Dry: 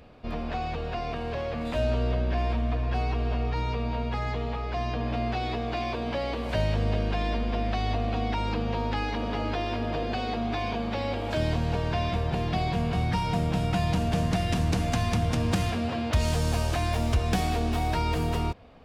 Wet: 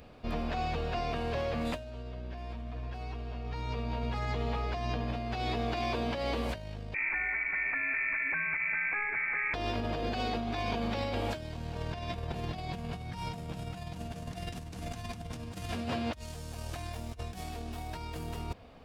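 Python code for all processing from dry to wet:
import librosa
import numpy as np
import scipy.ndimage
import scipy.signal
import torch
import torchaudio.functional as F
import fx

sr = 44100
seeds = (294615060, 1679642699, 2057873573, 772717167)

y = fx.chain(x, sr, fx.highpass(hz=110.0, slope=24),
    fx.air_absorb(metres=320.0),
    fx.freq_invert(carrier_hz=2500), at=(6.94, 9.54))
y = fx.high_shelf(y, sr, hz=6000.0, db=7.5)
y = fx.over_compress(y, sr, threshold_db=-30.0, ratio=-0.5)
y = y * 10.0 ** (-4.5 / 20.0)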